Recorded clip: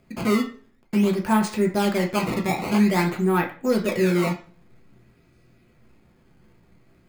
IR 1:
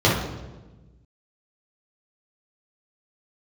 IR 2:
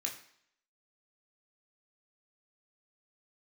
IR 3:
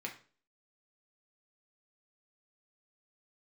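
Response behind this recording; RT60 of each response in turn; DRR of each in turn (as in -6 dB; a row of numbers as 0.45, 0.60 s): 3; 1.2, 0.65, 0.40 s; -7.0, -1.0, -0.5 dB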